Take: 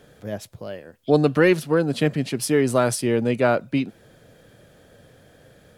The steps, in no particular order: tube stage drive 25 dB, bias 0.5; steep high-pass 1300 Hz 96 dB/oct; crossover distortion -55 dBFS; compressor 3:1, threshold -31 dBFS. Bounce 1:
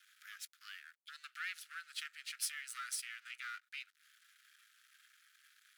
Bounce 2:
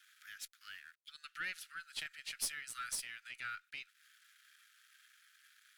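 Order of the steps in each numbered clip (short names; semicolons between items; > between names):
compressor > tube stage > crossover distortion > steep high-pass; crossover distortion > compressor > steep high-pass > tube stage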